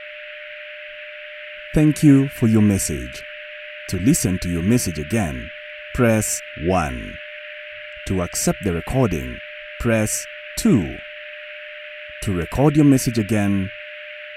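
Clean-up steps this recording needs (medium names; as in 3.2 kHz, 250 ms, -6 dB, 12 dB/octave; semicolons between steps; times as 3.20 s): band-stop 600 Hz, Q 30; noise print and reduce 27 dB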